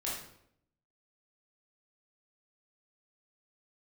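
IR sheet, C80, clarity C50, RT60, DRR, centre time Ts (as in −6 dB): 6.0 dB, 1.5 dB, 0.75 s, −6.5 dB, 52 ms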